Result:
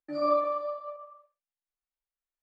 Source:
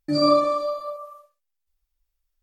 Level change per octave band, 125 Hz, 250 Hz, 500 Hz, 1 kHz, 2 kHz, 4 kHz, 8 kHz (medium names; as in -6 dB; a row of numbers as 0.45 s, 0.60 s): under -20 dB, -14.0 dB, -7.5 dB, -6.0 dB, -8.5 dB, under -20 dB, no reading